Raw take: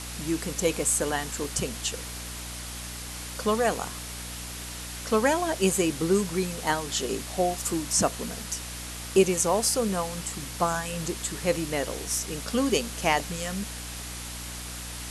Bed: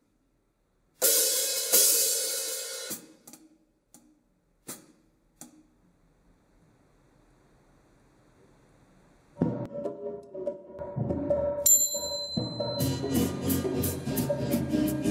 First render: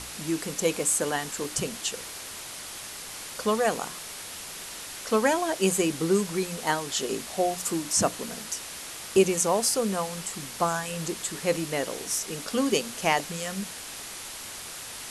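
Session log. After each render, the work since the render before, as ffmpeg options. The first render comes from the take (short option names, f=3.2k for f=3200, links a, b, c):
-af "bandreject=f=60:t=h:w=6,bandreject=f=120:t=h:w=6,bandreject=f=180:t=h:w=6,bandreject=f=240:t=h:w=6,bandreject=f=300:t=h:w=6"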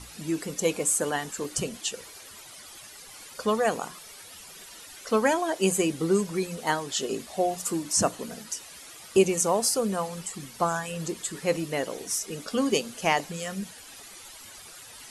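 -af "afftdn=nr=12:nf=-40"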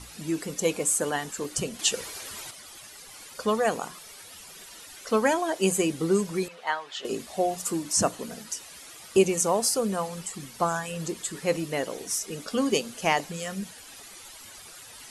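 -filter_complex "[0:a]asettb=1/sr,asplit=3[a][b][c];[a]atrim=end=1.794[d];[b]atrim=start=1.79:end=2.51,asetpts=PTS-STARTPTS,afade=t=in:d=0.004:c=qsin,afade=t=out:st=0.716:d=0.004:c=qsin,acontrast=76[e];[c]atrim=start=2.506[f];[d][e]acrossfade=d=0.004:c1=hsin:c2=qsin[g];[g][f]acrossfade=d=0.004:c1=qsin:c2=hsin,asettb=1/sr,asplit=3[h][i][j];[h]atrim=end=6.484[k];[i]atrim=start=6.48:end=7.05,asetpts=PTS-STARTPTS,afade=t=in:d=0.004:c=qsin,afade=t=out:st=0.566:d=0.004:c=qsin,acrossover=split=600 3900:gain=0.0708 1 0.1[l][m][n];[l][m][n]amix=inputs=3:normalize=0[o];[j]atrim=start=7.046[p];[k][o]acrossfade=d=0.004:c1=hsin:c2=qsin[q];[q][p]acrossfade=d=0.004:c1=qsin:c2=hsin"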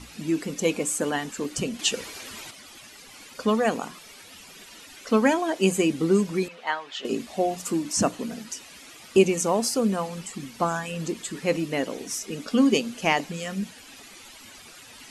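-af "equalizer=f=250:t=o:w=0.67:g=9,equalizer=f=2.5k:t=o:w=0.67:g=4,equalizer=f=10k:t=o:w=0.67:g=-6"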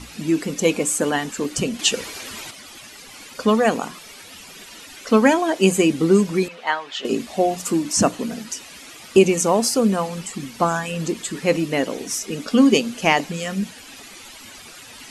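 -af "volume=5.5dB,alimiter=limit=-2dB:level=0:latency=1"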